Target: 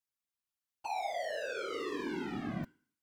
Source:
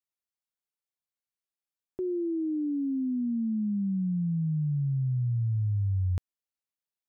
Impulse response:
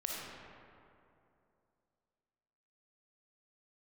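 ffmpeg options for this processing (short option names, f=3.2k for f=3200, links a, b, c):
-af "asetrate=103194,aresample=44100,dynaudnorm=f=370:g=9:m=16dB,asoftclip=type=tanh:threshold=-33dB,equalizer=f=510:t=o:w=0.94:g=-8.5,asoftclip=type=hard:threshold=-38.5dB,bandreject=f=252.8:t=h:w=4,bandreject=f=505.6:t=h:w=4,bandreject=f=758.4:t=h:w=4,bandreject=f=1.0112k:t=h:w=4,bandreject=f=1.264k:t=h:w=4,bandreject=f=1.5168k:t=h:w=4,bandreject=f=1.7696k:t=h:w=4,bandreject=f=2.0224k:t=h:w=4,bandreject=f=2.2752k:t=h:w=4,bandreject=f=2.528k:t=h:w=4,bandreject=f=2.7808k:t=h:w=4,bandreject=f=3.0336k:t=h:w=4,bandreject=f=3.2864k:t=h:w=4,bandreject=f=3.5392k:t=h:w=4,bandreject=f=3.792k:t=h:w=4,bandreject=f=4.0448k:t=h:w=4,bandreject=f=4.2976k:t=h:w=4,bandreject=f=4.5504k:t=h:w=4,bandreject=f=4.8032k:t=h:w=4,bandreject=f=5.056k:t=h:w=4,bandreject=f=5.3088k:t=h:w=4,bandreject=f=5.5616k:t=h:w=4,bandreject=f=5.8144k:t=h:w=4,bandreject=f=6.0672k:t=h:w=4,bandreject=f=6.32k:t=h:w=4,bandreject=f=6.5728k:t=h:w=4,bandreject=f=6.8256k:t=h:w=4,bandreject=f=7.0784k:t=h:w=4,bandreject=f=7.3312k:t=h:w=4,bandreject=f=7.584k:t=h:w=4,bandreject=f=7.8368k:t=h:w=4,bandreject=f=8.0896k:t=h:w=4,bandreject=f=8.3424k:t=h:w=4,bandreject=f=8.5952k:t=h:w=4,bandreject=f=8.848k:t=h:w=4,afftfilt=real='hypot(re,im)*cos(2*PI*random(0))':imag='hypot(re,im)*sin(2*PI*random(1))':win_size=512:overlap=0.75,volume=9dB"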